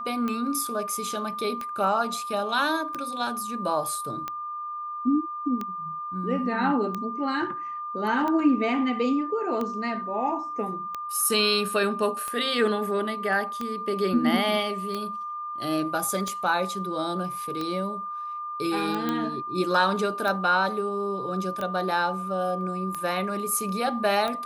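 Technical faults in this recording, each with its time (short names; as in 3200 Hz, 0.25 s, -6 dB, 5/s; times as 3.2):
tick 45 rpm -17 dBFS
tone 1200 Hz -31 dBFS
19.09 pop -14 dBFS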